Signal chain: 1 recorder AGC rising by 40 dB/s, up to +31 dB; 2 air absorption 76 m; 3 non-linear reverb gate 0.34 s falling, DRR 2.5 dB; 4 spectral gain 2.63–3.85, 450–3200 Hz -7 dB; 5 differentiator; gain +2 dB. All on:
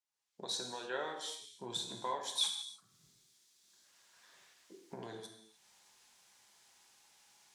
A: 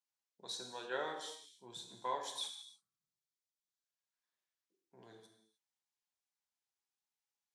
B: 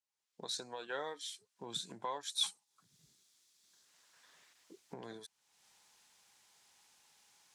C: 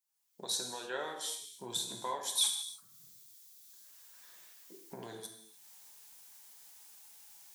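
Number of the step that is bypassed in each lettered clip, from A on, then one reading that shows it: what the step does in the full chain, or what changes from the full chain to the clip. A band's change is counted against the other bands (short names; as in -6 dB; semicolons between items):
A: 1, momentary loudness spread change +2 LU; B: 3, loudness change -1.5 LU; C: 2, 8 kHz band +8.0 dB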